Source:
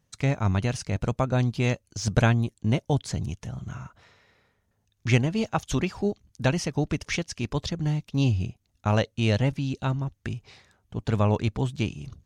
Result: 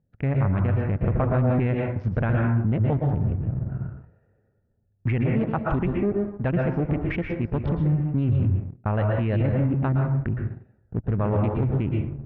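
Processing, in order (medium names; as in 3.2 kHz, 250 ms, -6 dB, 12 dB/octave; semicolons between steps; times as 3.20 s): local Wiener filter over 41 samples; plate-style reverb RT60 0.56 s, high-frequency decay 0.6×, pre-delay 105 ms, DRR 4.5 dB; waveshaping leveller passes 1; peak limiter -17.5 dBFS, peak gain reduction 10.5 dB; 1.01–1.67 s: waveshaping leveller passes 1; low-pass 2.1 kHz 24 dB/octave; trim +2.5 dB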